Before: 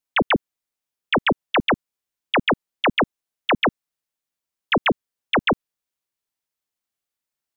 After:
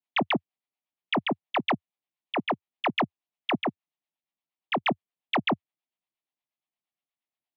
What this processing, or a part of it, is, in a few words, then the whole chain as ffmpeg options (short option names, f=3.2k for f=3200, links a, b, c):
guitar amplifier with harmonic tremolo: -filter_complex "[0:a]highpass=f=110:w=0.5412,highpass=f=110:w=1.3066,acrossover=split=510[a][b];[a]aeval=exprs='val(0)*(1-0.7/2+0.7/2*cos(2*PI*8.5*n/s))':c=same[c];[b]aeval=exprs='val(0)*(1-0.7/2-0.7/2*cos(2*PI*8.5*n/s))':c=same[d];[c][d]amix=inputs=2:normalize=0,asoftclip=type=tanh:threshold=-18dB,highpass=83,equalizer=f=88:t=q:w=4:g=-9,equalizer=f=480:t=q:w=4:g=-9,equalizer=f=720:t=q:w=4:g=4,equalizer=f=1.5k:t=q:w=4:g=-10,lowpass=f=3.6k:w=0.5412,lowpass=f=3.6k:w=1.3066"